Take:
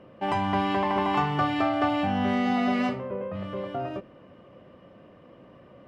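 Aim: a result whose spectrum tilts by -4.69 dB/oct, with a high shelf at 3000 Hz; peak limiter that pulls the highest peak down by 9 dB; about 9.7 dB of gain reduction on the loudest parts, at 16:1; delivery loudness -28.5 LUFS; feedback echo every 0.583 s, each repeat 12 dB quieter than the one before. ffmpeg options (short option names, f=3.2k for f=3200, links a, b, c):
-af "highshelf=f=3k:g=3,acompressor=threshold=-30dB:ratio=16,alimiter=level_in=6.5dB:limit=-24dB:level=0:latency=1,volume=-6.5dB,aecho=1:1:583|1166|1749:0.251|0.0628|0.0157,volume=10.5dB"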